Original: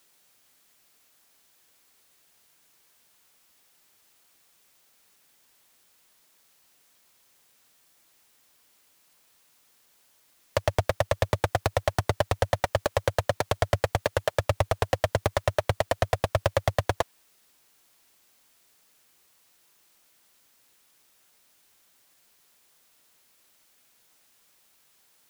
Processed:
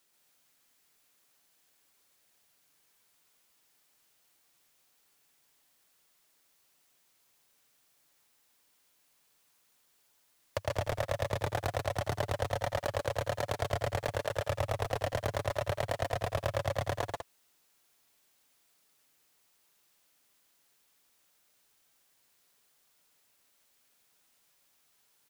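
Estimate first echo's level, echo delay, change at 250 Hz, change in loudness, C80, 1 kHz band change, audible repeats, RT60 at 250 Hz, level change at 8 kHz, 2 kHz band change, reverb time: -16.0 dB, 80 ms, -6.5 dB, -6.5 dB, no reverb, -6.5 dB, 3, no reverb, -6.5 dB, -6.5 dB, no reverb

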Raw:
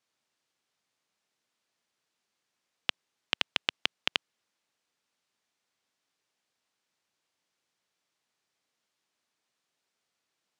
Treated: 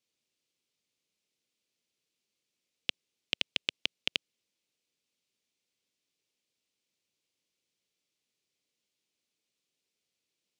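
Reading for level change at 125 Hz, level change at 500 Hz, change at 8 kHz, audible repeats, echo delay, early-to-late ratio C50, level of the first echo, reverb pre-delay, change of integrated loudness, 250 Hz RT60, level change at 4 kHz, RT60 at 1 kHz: -1.5 dB, -3.5 dB, -1.5 dB, no echo, no echo, no reverb, no echo, no reverb, -2.0 dB, no reverb, -1.5 dB, no reverb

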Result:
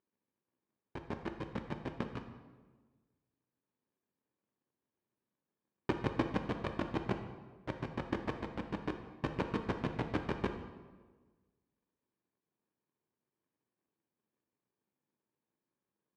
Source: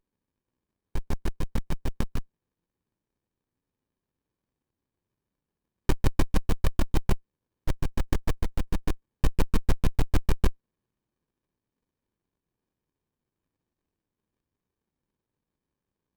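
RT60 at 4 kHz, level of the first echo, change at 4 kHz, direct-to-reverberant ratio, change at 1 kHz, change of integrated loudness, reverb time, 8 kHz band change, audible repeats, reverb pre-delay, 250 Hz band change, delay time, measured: 0.95 s, no echo, -8.5 dB, 5.0 dB, -2.5 dB, -7.5 dB, 1.4 s, under -20 dB, no echo, 3 ms, -4.0 dB, no echo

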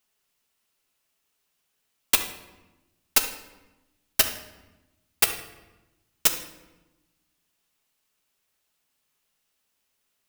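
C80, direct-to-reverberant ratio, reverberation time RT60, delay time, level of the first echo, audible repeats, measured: 12.0 dB, 4.5 dB, 1.1 s, no echo, no echo, no echo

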